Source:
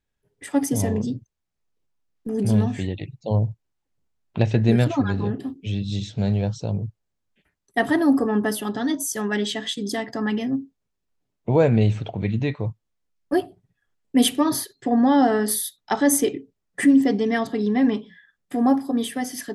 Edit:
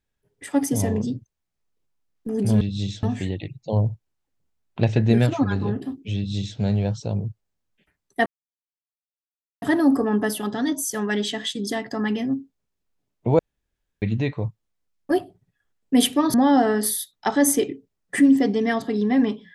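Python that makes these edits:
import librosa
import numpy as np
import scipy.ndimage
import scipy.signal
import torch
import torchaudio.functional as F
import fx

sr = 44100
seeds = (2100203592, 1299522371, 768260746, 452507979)

y = fx.edit(x, sr, fx.duplicate(start_s=5.74, length_s=0.42, to_s=2.61),
    fx.insert_silence(at_s=7.84, length_s=1.36),
    fx.room_tone_fill(start_s=11.61, length_s=0.63),
    fx.cut(start_s=14.56, length_s=0.43), tone=tone)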